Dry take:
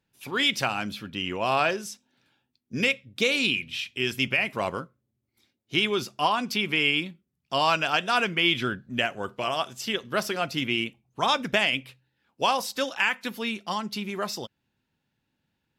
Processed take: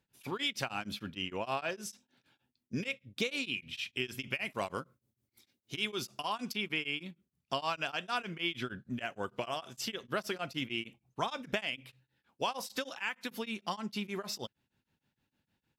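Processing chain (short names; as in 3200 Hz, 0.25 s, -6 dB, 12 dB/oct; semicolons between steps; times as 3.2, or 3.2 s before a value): compressor 3:1, threshold -32 dBFS, peak gain reduction 11 dB; 4.3–6.52 high shelf 4300 Hz +7.5 dB; beating tremolo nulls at 6.5 Hz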